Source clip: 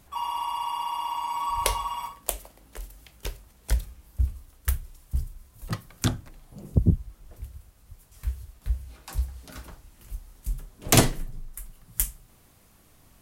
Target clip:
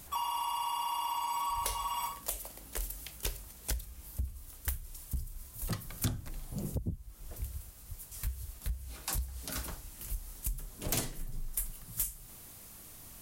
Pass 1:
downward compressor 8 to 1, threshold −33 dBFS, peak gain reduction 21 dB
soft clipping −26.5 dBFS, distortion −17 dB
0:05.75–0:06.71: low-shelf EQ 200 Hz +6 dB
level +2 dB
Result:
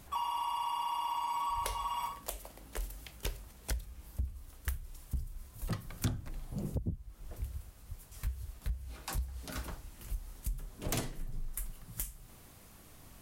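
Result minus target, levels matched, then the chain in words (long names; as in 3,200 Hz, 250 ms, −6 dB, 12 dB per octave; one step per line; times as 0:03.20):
8,000 Hz band −4.5 dB
downward compressor 8 to 1, threshold −33 dBFS, peak gain reduction 21 dB
high-shelf EQ 4,700 Hz +11 dB
soft clipping −26.5 dBFS, distortion −7 dB
0:05.75–0:06.71: low-shelf EQ 200 Hz +6 dB
level +2 dB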